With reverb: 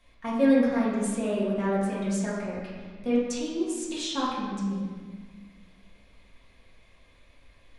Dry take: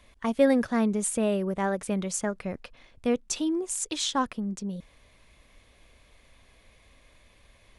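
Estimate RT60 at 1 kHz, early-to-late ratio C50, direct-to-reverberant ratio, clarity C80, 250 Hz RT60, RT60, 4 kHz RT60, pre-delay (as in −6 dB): 1.5 s, −0.5 dB, −8.0 dB, 2.0 dB, 2.3 s, 1.6 s, 1.2 s, 4 ms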